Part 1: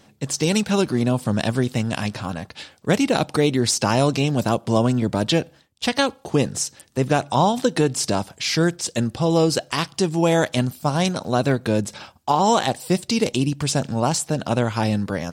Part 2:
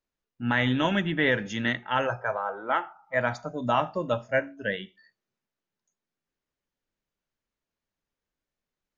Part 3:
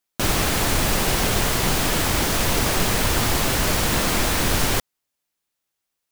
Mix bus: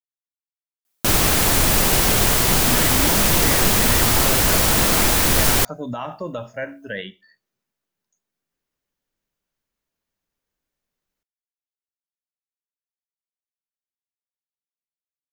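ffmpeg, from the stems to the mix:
ffmpeg -i stem1.wav -i stem2.wav -i stem3.wav -filter_complex "[1:a]adelay=2250,volume=3dB[link_01];[2:a]adelay=850,volume=2dB[link_02];[link_01]alimiter=limit=-19dB:level=0:latency=1,volume=0dB[link_03];[link_02][link_03]amix=inputs=2:normalize=0,highshelf=frequency=8100:gain=7.5" out.wav

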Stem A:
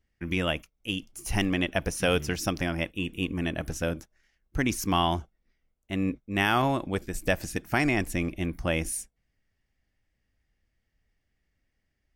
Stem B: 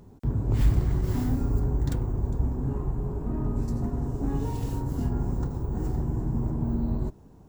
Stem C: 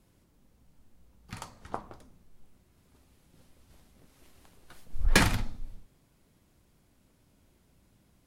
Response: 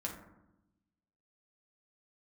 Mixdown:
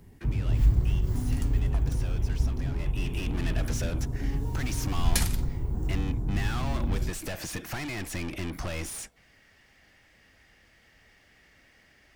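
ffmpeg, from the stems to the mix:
-filter_complex "[0:a]acompressor=threshold=-35dB:ratio=5,asplit=2[link_01][link_02];[link_02]highpass=frequency=720:poles=1,volume=35dB,asoftclip=type=tanh:threshold=-22dB[link_03];[link_01][link_03]amix=inputs=2:normalize=0,lowpass=frequency=4400:poles=1,volume=-6dB,volume=-4dB,afade=type=in:start_time=2.74:duration=0.59:silence=0.266073[link_04];[1:a]volume=-6dB[link_05];[2:a]crystalizer=i=3:c=0,volume=-10dB[link_06];[link_04][link_05][link_06]amix=inputs=3:normalize=0,acrossover=split=150|3000[link_07][link_08][link_09];[link_08]acompressor=threshold=-40dB:ratio=1.5[link_10];[link_07][link_10][link_09]amix=inputs=3:normalize=0,lowshelf=frequency=110:gain=8.5"

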